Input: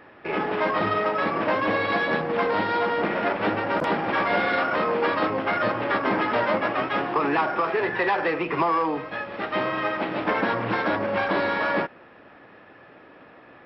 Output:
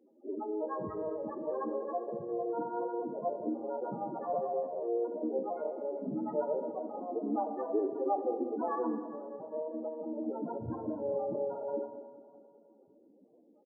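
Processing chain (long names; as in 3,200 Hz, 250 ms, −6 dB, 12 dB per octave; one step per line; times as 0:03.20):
low-pass filter 1,000 Hz 24 dB per octave
spectral peaks only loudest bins 2
pitch-shifted copies added −5 semitones −5 dB, +7 semitones −17 dB
on a send: repeating echo 202 ms, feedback 59%, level −14 dB
on the sum: reverb whose tail is shaped and stops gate 440 ms falling, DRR 8 dB
level −5 dB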